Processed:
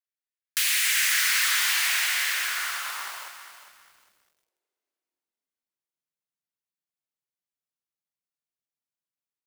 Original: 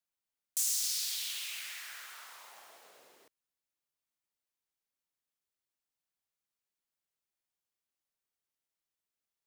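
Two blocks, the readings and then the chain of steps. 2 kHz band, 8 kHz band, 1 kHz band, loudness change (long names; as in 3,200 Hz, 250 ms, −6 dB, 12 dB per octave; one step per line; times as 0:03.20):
+24.0 dB, +9.0 dB, +21.0 dB, +10.5 dB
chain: sub-harmonics by changed cycles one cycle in 2, inverted
automatic gain control gain up to 3 dB
feedback delay with all-pass diffusion 479 ms, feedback 42%, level −12.5 dB
downward compressor 12 to 1, threshold −34 dBFS, peak gain reduction 9.5 dB
leveller curve on the samples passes 5
high-pass filter sweep 1,800 Hz → 130 Hz, 0:02.33–0:06.30
feedback echo at a low word length 403 ms, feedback 35%, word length 9 bits, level −10.5 dB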